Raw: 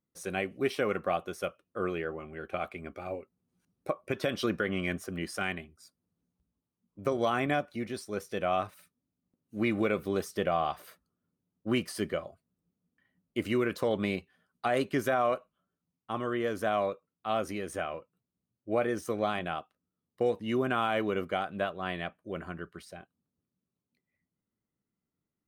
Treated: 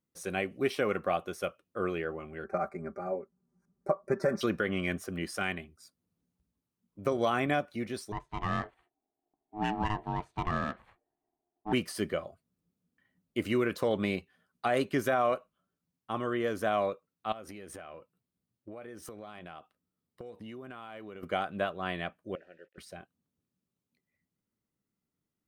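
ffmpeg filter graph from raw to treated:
-filter_complex "[0:a]asettb=1/sr,asplit=3[s0][s1][s2];[s0]atrim=end=2.444[s3];[s1]atrim=start=2.44:end=4.41,asetpts=PTS-STARTPTS,afade=t=in:d=0.004:c=qsin,afade=t=out:st=1.966:d=0.004:c=qsin,aecho=1:1:5.1:0.93,atrim=end_sample=86877,adynamicsmooth=sensitivity=4.5:basefreq=6100,asuperstop=centerf=3100:order=4:qfactor=0.81[s4];[s2]atrim=start=4.406[s5];[s3][s4]acrossfade=d=0.004:c1=hsin:c2=qsin[s6];[s6][s5]acrossfade=d=0.004:c1=qsin:c2=hsin,asettb=1/sr,asplit=3[s7][s8][s9];[s7]atrim=end=8.124[s10];[s8]atrim=start=8.12:end=11.73,asetpts=PTS-STARTPTS,afade=t=in:d=0.004:c=qsin,afade=t=out:st=3.606:d=0.004:c=qsin,aeval=exprs='val(0)*sin(2*PI*530*n/s)':c=same,equalizer=f=5300:t=o:w=0.41:g=-13,adynamicsmooth=sensitivity=5.5:basefreq=2300[s11];[s9]atrim=start=11.726[s12];[s10][s11]acrossfade=d=0.004:c1=hsin:c2=qsin[s13];[s13][s12]acrossfade=d=0.004:c1=qsin:c2=hsin,asettb=1/sr,asplit=3[s14][s15][s16];[s14]atrim=end=17.324[s17];[s15]atrim=start=17.32:end=21.23,asetpts=PTS-STARTPTS,afade=t=in:d=0.004:c=qsin,afade=t=out:st=3.906:d=0.004:c=qsin,equalizer=f=6400:t=o:w=0.26:g=-4,acompressor=threshold=0.00891:ratio=10:attack=3.2:release=140:knee=1:detection=peak[s18];[s16]atrim=start=21.226[s19];[s17][s18]acrossfade=d=0.004:c1=hsin:c2=qsin[s20];[s20][s19]acrossfade=d=0.004:c1=qsin:c2=hsin,asettb=1/sr,asplit=3[s21][s22][s23];[s21]atrim=end=22.354[s24];[s22]atrim=start=22.35:end=22.78,asetpts=PTS-STARTPTS,afade=t=in:d=0.004:c=qsin,afade=t=out:st=0.426:d=0.004:c=qsin,acrusher=bits=8:mix=0:aa=0.5,asplit=3[s25][s26][s27];[s25]bandpass=f=530:t=q:w=8,volume=1[s28];[s26]bandpass=f=1840:t=q:w=8,volume=0.501[s29];[s27]bandpass=f=2480:t=q:w=8,volume=0.355[s30];[s28][s29][s30]amix=inputs=3:normalize=0[s31];[s23]atrim=start=22.776[s32];[s24][s31]acrossfade=d=0.004:c1=hsin:c2=qsin[s33];[s33][s32]acrossfade=d=0.004:c1=qsin:c2=hsin"

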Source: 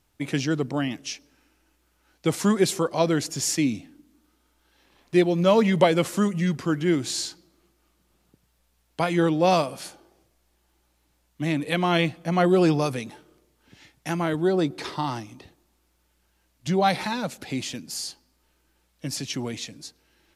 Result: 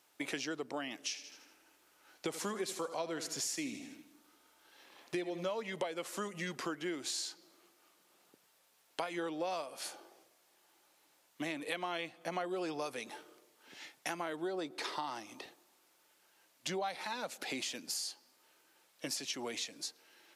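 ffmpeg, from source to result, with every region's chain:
-filter_complex "[0:a]asettb=1/sr,asplit=3[s0][s1][s2];[s0]atrim=end=1.084[s3];[s1]atrim=start=1.08:end=5.5,asetpts=PTS-STARTPTS,afade=t=in:d=0.004:c=qsin,afade=t=out:st=4.416:d=0.004:c=qsin,lowshelf=f=120:g=10,aecho=1:1:79|158|237|316|395:0.211|0.0993|0.0467|0.0219|0.0103,atrim=end_sample=194922[s4];[s2]atrim=start=5.496[s5];[s3][s4]acrossfade=d=0.004:c1=hsin:c2=qsin[s6];[s6][s5]acrossfade=d=0.004:c1=qsin:c2=hsin,highpass=440,acompressor=threshold=0.0112:ratio=6,volume=1.33"

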